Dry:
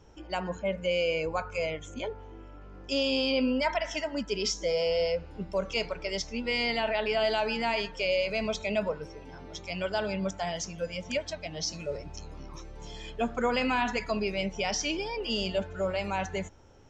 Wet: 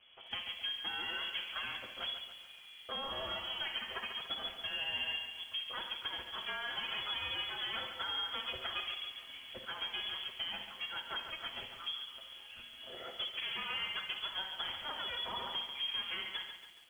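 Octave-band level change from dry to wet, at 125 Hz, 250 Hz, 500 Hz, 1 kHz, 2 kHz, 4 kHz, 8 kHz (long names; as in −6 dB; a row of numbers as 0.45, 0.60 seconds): −20.0 dB, −24.5 dB, −22.5 dB, −10.0 dB, −6.5 dB, 0.0 dB, below −20 dB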